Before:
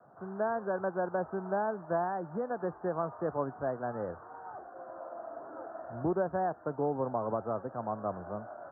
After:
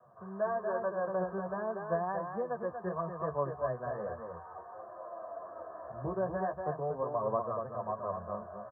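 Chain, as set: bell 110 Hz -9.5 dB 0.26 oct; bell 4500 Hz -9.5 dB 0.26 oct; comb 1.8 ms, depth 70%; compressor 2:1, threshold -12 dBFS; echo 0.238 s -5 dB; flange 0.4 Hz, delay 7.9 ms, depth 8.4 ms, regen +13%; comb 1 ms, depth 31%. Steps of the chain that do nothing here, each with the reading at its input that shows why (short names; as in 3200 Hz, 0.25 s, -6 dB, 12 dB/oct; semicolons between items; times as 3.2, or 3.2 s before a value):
bell 4500 Hz: input band ends at 1800 Hz; compressor, threshold -12 dBFS: input peak -18.0 dBFS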